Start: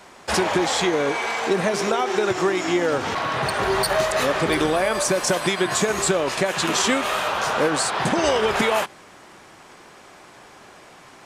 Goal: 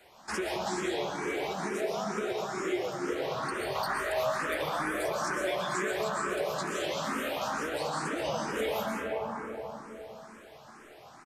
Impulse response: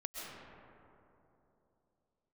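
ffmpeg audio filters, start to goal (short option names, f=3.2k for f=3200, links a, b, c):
-filter_complex "[0:a]asettb=1/sr,asplit=3[a][b][c];[a]atrim=end=3.754[d];[b]atrim=start=3.75:end=6.25,asetpts=PTS-STARTPTS,afade=t=in:d=0.004:c=qsin,afade=t=out:st=2.496:d=0.004:c=qsin,equalizer=f=1.3k:w=0.55:g=10[e];[c]atrim=start=6.246[f];[d][e]acrossfade=d=0.004:c1=hsin:c2=qsin[g];[g][f]acrossfade=d=0.004:c1=qsin:c2=hsin[h];[1:a]atrim=start_sample=2205[i];[h][i]afir=irnorm=-1:irlink=0,acrossover=split=140|4800[j][k][l];[j]acompressor=threshold=-46dB:ratio=4[m];[k]acompressor=threshold=-24dB:ratio=4[n];[l]acompressor=threshold=-39dB:ratio=4[o];[m][n][o]amix=inputs=3:normalize=0,equalizer=f=13k:w=8:g=14.5,asplit=2[p][q];[q]adelay=14,volume=-11dB[r];[p][r]amix=inputs=2:normalize=0,asplit=2[s][t];[t]afreqshift=2.2[u];[s][u]amix=inputs=2:normalize=1,volume=-4dB"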